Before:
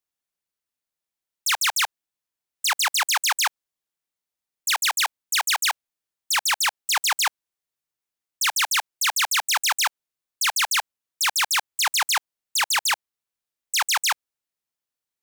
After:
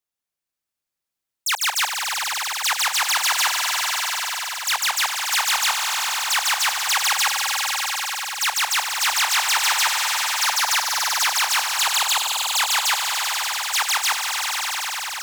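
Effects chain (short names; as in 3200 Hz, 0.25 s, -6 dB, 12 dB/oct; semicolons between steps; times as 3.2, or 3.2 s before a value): swelling echo 97 ms, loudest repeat 5, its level -8.5 dB; 10.68–11.29 three-band squash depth 70%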